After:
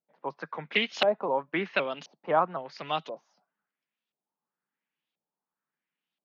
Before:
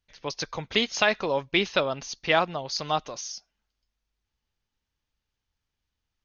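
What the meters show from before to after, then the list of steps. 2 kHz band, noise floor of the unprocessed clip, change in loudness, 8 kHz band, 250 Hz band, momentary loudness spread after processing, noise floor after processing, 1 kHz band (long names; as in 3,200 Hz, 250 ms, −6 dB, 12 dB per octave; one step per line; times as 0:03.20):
−4.5 dB, −85 dBFS, −2.5 dB, can't be measured, −4.5 dB, 14 LU, below −85 dBFS, −1.0 dB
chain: auto-filter low-pass saw up 0.97 Hz 640–3,600 Hz
Butterworth high-pass 150 Hz 72 dB per octave
pitch modulation by a square or saw wave saw up 3.9 Hz, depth 100 cents
level −5 dB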